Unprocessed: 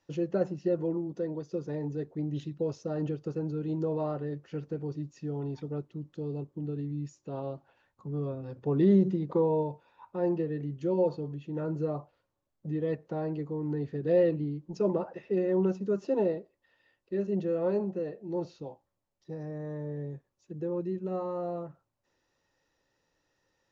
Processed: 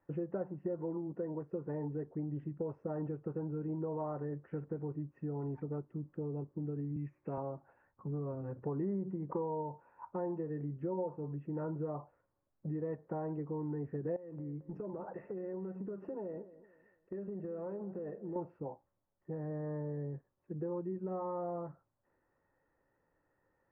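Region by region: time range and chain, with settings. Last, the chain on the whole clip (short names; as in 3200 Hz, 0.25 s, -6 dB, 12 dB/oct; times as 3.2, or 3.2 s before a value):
6.96–7.38 bell 2300 Hz +14 dB 0.62 oct + three-band squash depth 40%
14.16–18.36 compressor 16:1, threshold -37 dBFS + feedback echo 0.223 s, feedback 34%, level -16.5 dB
whole clip: inverse Chebyshev low-pass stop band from 3600 Hz, stop band 40 dB; dynamic EQ 930 Hz, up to +7 dB, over -52 dBFS, Q 2.8; compressor 4:1, threshold -36 dBFS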